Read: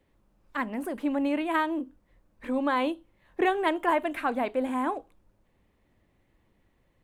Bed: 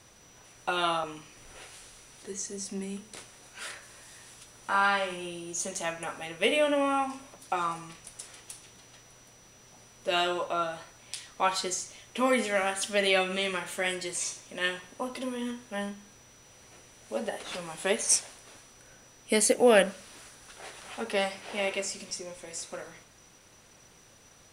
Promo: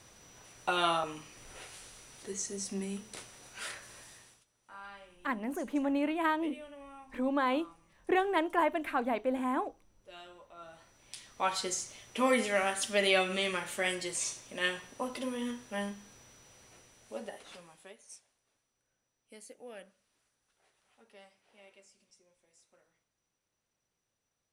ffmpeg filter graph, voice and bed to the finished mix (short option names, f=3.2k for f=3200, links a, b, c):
-filter_complex "[0:a]adelay=4700,volume=-3.5dB[a];[1:a]volume=20.5dB,afade=t=out:st=3.99:d=0.46:silence=0.0749894,afade=t=in:st=10.55:d=1.26:silence=0.0841395,afade=t=out:st=16.22:d=1.72:silence=0.0501187[b];[a][b]amix=inputs=2:normalize=0"